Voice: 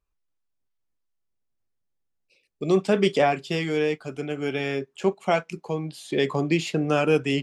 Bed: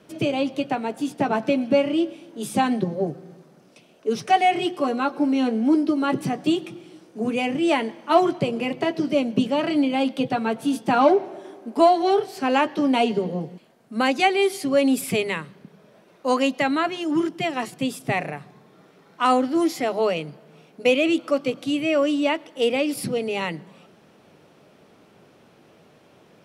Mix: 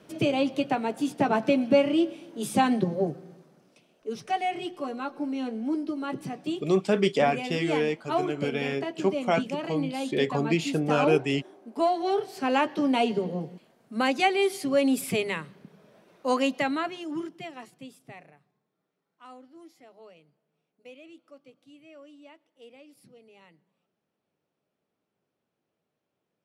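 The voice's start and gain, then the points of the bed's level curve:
4.00 s, -2.5 dB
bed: 2.99 s -1.5 dB
3.95 s -10 dB
11.67 s -10 dB
12.45 s -4 dB
16.56 s -4 dB
18.72 s -29 dB

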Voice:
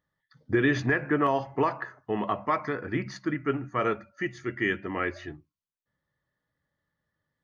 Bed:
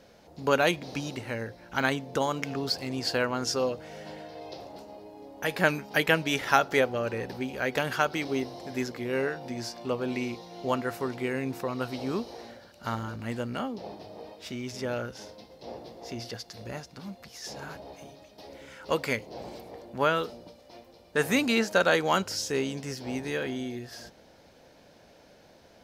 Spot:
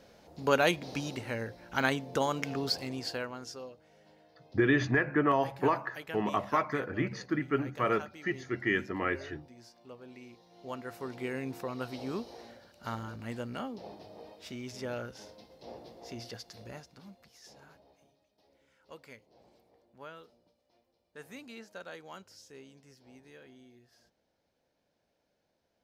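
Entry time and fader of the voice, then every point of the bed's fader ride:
4.05 s, -2.0 dB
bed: 2.76 s -2 dB
3.75 s -19 dB
10.21 s -19 dB
11.25 s -5.5 dB
16.52 s -5.5 dB
18.24 s -22.5 dB

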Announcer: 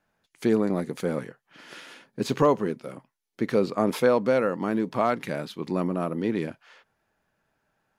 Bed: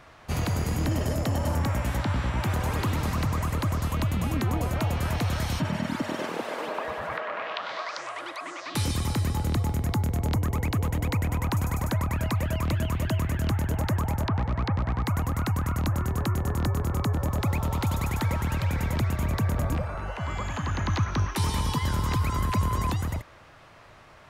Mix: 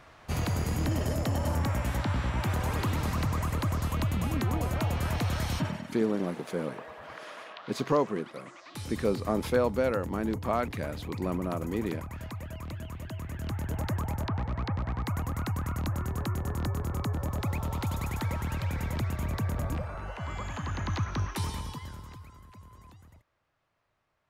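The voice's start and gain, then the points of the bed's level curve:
5.50 s, -5.0 dB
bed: 5.65 s -2.5 dB
5.86 s -12.5 dB
13.12 s -12.5 dB
13.77 s -5 dB
21.37 s -5 dB
22.41 s -26 dB

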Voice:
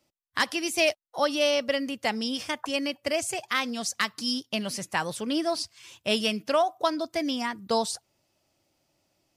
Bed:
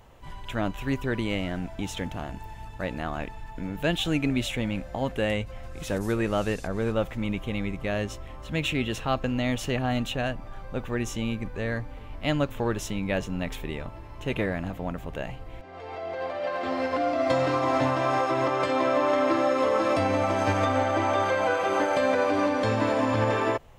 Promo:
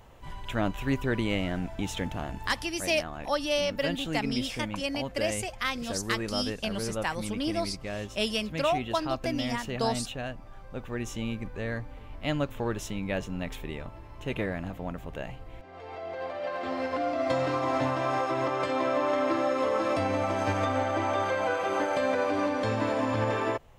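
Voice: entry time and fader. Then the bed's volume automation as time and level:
2.10 s, -3.5 dB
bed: 2.50 s 0 dB
2.76 s -7 dB
10.63 s -7 dB
11.21 s -3.5 dB

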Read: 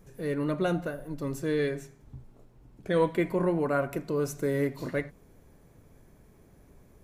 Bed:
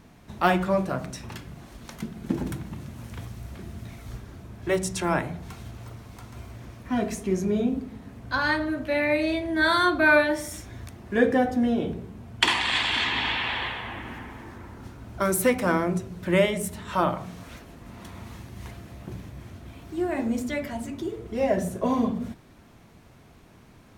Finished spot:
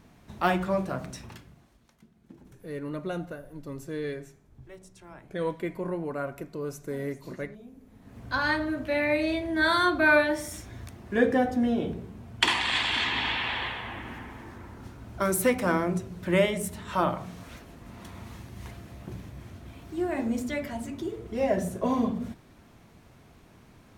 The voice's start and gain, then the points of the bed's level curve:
2.45 s, -5.5 dB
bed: 1.19 s -3.5 dB
1.97 s -23.5 dB
7.74 s -23.5 dB
8.19 s -2 dB

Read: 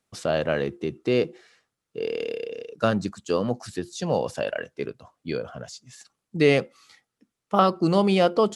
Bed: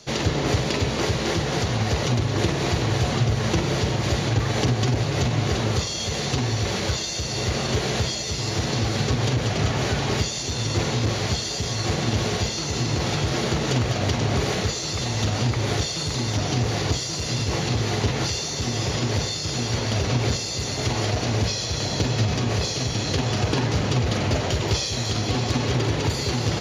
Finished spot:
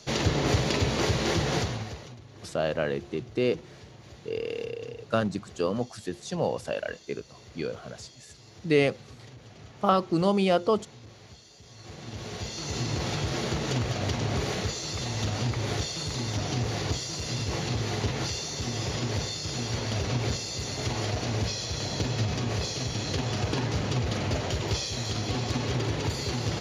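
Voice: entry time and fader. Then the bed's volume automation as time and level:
2.30 s, -3.5 dB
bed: 1.57 s -2.5 dB
2.18 s -25.5 dB
11.59 s -25.5 dB
12.72 s -6 dB

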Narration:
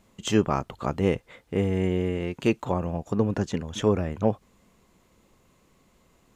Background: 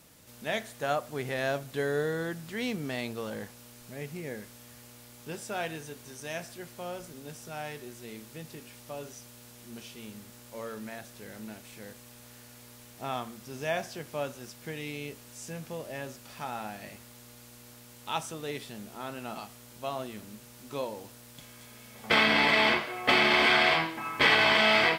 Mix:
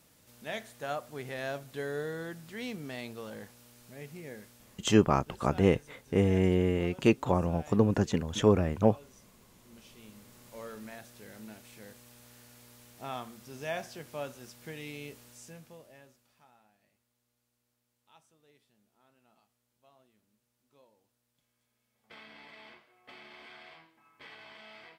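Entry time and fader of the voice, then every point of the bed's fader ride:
4.60 s, -0.5 dB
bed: 4.43 s -6 dB
4.97 s -12.5 dB
9.52 s -12.5 dB
10.54 s -4.5 dB
15.25 s -4.5 dB
16.66 s -29 dB

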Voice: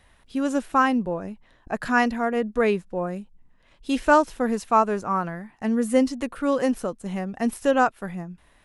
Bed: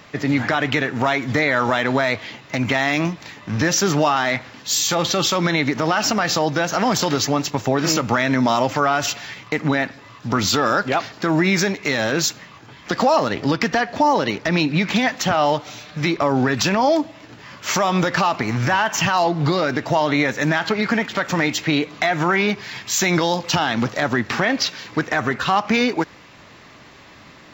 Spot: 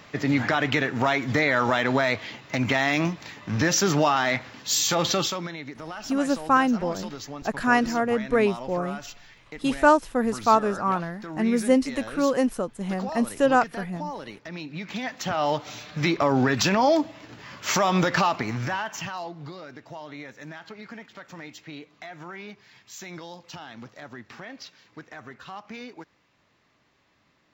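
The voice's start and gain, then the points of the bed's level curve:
5.75 s, 0.0 dB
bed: 5.16 s -3.5 dB
5.55 s -18 dB
14.64 s -18 dB
15.72 s -3 dB
18.21 s -3 dB
19.56 s -21.5 dB

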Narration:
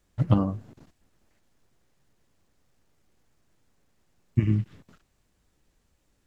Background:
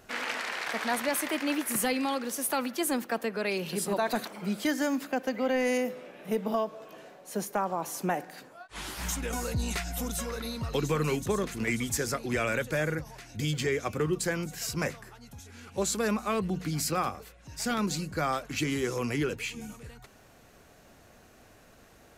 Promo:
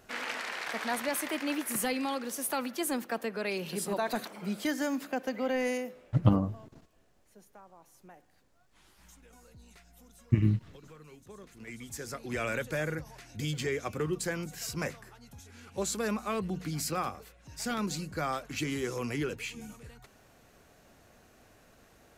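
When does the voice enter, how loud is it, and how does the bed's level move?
5.95 s, -2.0 dB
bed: 5.66 s -3 dB
6.52 s -24.5 dB
11.09 s -24.5 dB
12.45 s -3.5 dB

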